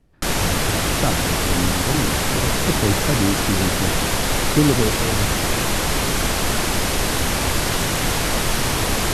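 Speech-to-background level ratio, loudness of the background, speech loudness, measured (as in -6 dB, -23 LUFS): -4.5 dB, -20.0 LUFS, -24.5 LUFS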